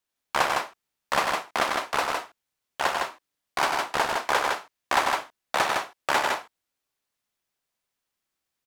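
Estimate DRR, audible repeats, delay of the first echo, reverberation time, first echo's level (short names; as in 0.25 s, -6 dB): none, 2, 93 ms, none, -6.5 dB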